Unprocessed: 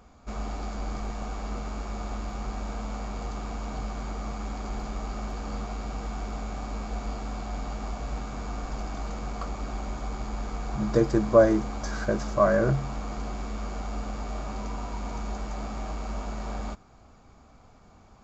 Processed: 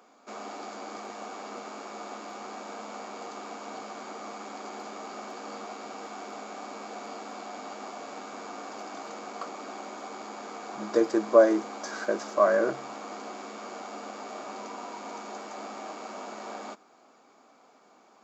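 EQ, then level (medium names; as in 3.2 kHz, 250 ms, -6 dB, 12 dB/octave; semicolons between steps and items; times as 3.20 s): high-pass 280 Hz 24 dB/octave; 0.0 dB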